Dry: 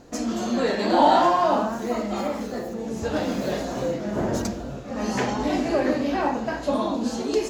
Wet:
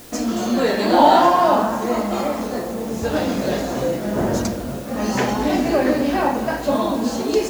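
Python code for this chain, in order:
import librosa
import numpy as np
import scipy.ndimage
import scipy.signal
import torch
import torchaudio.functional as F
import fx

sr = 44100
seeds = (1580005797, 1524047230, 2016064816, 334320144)

p1 = fx.quant_dither(x, sr, seeds[0], bits=8, dither='triangular')
p2 = p1 + fx.echo_bbd(p1, sr, ms=235, stages=4096, feedback_pct=65, wet_db=-14.0, dry=0)
y = p2 * 10.0 ** (4.5 / 20.0)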